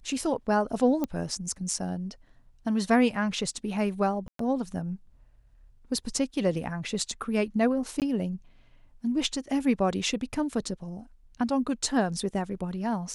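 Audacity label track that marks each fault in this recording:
1.040000	1.040000	click −16 dBFS
4.280000	4.390000	drop-out 113 ms
8.000000	8.020000	drop-out 18 ms

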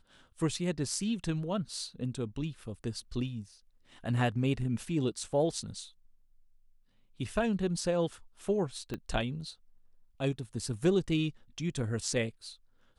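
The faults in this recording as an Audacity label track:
8.940000	8.940000	click −23 dBFS

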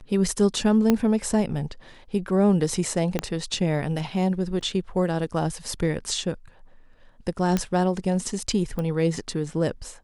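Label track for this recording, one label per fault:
0.900000	0.900000	click −7 dBFS
3.190000	3.190000	click −10 dBFS
4.610000	4.610000	drop-out 2.2 ms
7.570000	7.570000	click −10 dBFS
8.790000	8.790000	click −18 dBFS

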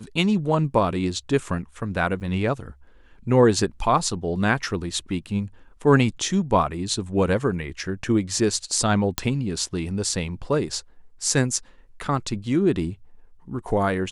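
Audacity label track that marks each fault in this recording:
2.200000	2.210000	drop-out 9 ms
9.180000	9.180000	click −6 dBFS

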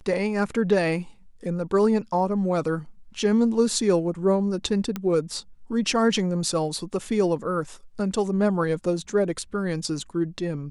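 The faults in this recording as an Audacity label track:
4.960000	4.960000	click −15 dBFS

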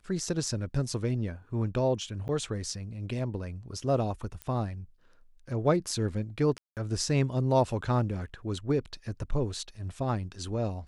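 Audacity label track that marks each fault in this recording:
2.280000	2.290000	drop-out 9.6 ms
4.420000	4.420000	click −23 dBFS
6.580000	6.770000	drop-out 188 ms

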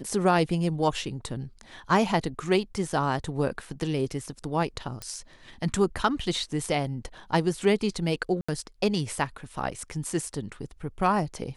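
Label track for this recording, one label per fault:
5.020000	5.020000	click −19 dBFS
8.410000	8.480000	drop-out 75 ms

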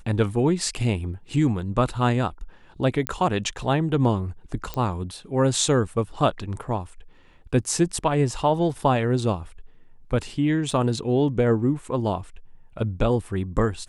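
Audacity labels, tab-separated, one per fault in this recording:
3.070000	3.070000	click −8 dBFS
4.740000	4.740000	click −15 dBFS
10.710000	10.710000	drop-out 3.6 ms

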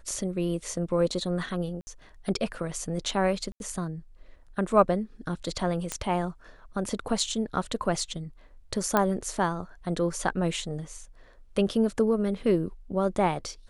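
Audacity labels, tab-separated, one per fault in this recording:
1.810000	1.870000	drop-out 60 ms
3.520000	3.600000	drop-out 81 ms
5.920000	5.920000	click −14 dBFS
8.970000	8.970000	click −9 dBFS

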